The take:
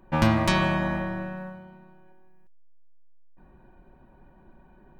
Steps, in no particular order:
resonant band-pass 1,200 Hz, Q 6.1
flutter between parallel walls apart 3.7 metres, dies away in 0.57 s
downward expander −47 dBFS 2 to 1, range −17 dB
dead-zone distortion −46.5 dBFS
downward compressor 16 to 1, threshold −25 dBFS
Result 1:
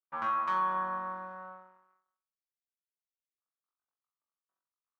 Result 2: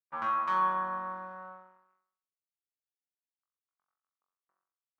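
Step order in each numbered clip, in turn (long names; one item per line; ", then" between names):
dead-zone distortion, then flutter between parallel walls, then downward expander, then resonant band-pass, then downward compressor
downward expander, then dead-zone distortion, then resonant band-pass, then downward compressor, then flutter between parallel walls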